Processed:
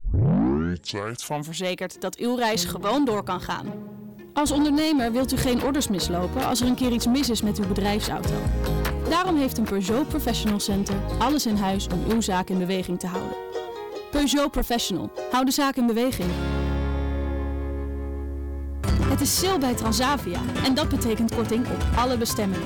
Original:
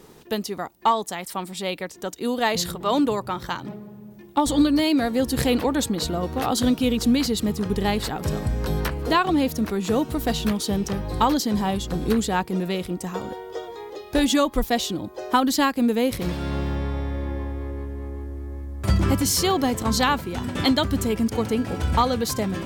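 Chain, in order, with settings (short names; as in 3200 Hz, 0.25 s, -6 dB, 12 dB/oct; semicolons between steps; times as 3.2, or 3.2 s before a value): tape start at the beginning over 1.71 s; soft clip -19.5 dBFS, distortion -11 dB; gain +2.5 dB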